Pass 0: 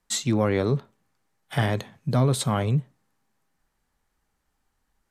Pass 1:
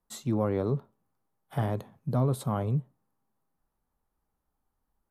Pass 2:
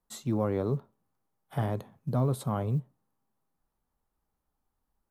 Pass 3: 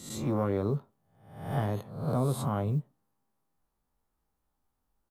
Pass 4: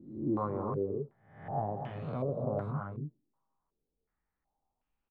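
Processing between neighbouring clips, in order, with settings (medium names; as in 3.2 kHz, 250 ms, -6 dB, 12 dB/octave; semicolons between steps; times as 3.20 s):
high-order bell 3.7 kHz -11.5 dB 2.7 oct; trim -5 dB
short-mantissa float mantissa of 6-bit; trim -1 dB
reverse spectral sustain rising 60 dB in 0.67 s; doubling 20 ms -12 dB; trim -1.5 dB
loudspeakers at several distances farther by 83 m -9 dB, 97 m -6 dB; step-sequenced low-pass 2.7 Hz 320–2600 Hz; trim -8.5 dB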